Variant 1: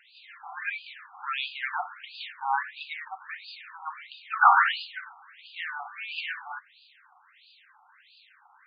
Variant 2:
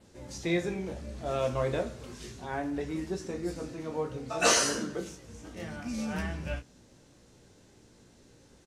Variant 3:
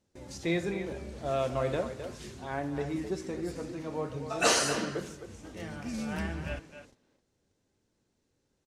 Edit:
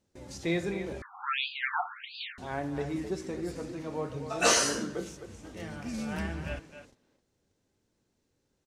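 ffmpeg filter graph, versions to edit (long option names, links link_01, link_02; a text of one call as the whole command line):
ffmpeg -i take0.wav -i take1.wav -i take2.wav -filter_complex "[2:a]asplit=3[link_01][link_02][link_03];[link_01]atrim=end=1.022[link_04];[0:a]atrim=start=1.018:end=2.382[link_05];[link_02]atrim=start=2.378:end=4.422[link_06];[1:a]atrim=start=4.418:end=5.172[link_07];[link_03]atrim=start=5.168[link_08];[link_04][link_05]acrossfade=duration=0.004:curve1=hsin:curve2=hsin[link_09];[link_09][link_06]acrossfade=duration=0.004:curve1=hsin:curve2=hsin[link_10];[link_10][link_07]acrossfade=duration=0.004:curve1=hsin:curve2=hsin[link_11];[link_11][link_08]acrossfade=duration=0.004:curve1=hsin:curve2=hsin" out.wav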